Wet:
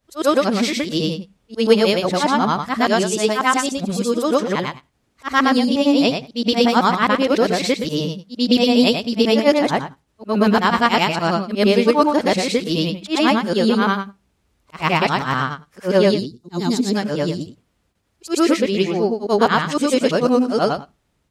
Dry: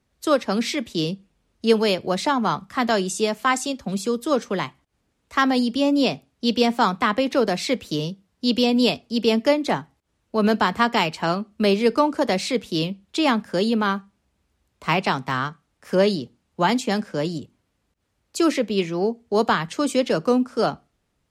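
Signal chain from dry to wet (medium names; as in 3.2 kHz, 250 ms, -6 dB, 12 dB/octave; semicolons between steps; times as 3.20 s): short-time spectra conjugated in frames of 245 ms; time-frequency box 16.26–16.95 s, 470–3500 Hz -14 dB; trim +7.5 dB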